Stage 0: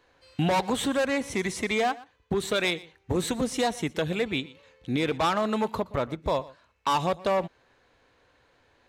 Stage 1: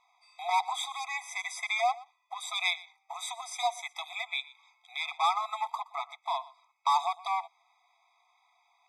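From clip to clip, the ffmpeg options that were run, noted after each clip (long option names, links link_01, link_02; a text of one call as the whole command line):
ffmpeg -i in.wav -af "lowpass=10000,afftfilt=real='re*eq(mod(floor(b*sr/1024/650),2),1)':imag='im*eq(mod(floor(b*sr/1024/650),2),1)':win_size=1024:overlap=0.75" out.wav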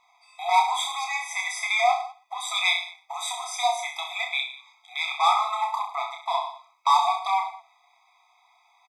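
ffmpeg -i in.wav -af "aecho=1:1:30|64.5|104.2|149.8|202.3:0.631|0.398|0.251|0.158|0.1,volume=5dB" out.wav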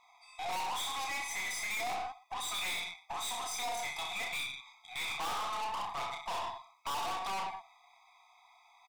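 ffmpeg -i in.wav -af "aeval=exprs='(tanh(56.2*val(0)+0.35)-tanh(0.35))/56.2':channel_layout=same" out.wav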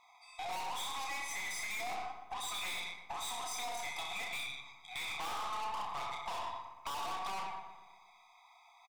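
ffmpeg -i in.wav -filter_complex "[0:a]acompressor=threshold=-38dB:ratio=6,asplit=2[link_01][link_02];[link_02]adelay=119,lowpass=frequency=2400:poles=1,volume=-8dB,asplit=2[link_03][link_04];[link_04]adelay=119,lowpass=frequency=2400:poles=1,volume=0.55,asplit=2[link_05][link_06];[link_06]adelay=119,lowpass=frequency=2400:poles=1,volume=0.55,asplit=2[link_07][link_08];[link_08]adelay=119,lowpass=frequency=2400:poles=1,volume=0.55,asplit=2[link_09][link_10];[link_10]adelay=119,lowpass=frequency=2400:poles=1,volume=0.55,asplit=2[link_11][link_12];[link_12]adelay=119,lowpass=frequency=2400:poles=1,volume=0.55,asplit=2[link_13][link_14];[link_14]adelay=119,lowpass=frequency=2400:poles=1,volume=0.55[link_15];[link_03][link_05][link_07][link_09][link_11][link_13][link_15]amix=inputs=7:normalize=0[link_16];[link_01][link_16]amix=inputs=2:normalize=0" out.wav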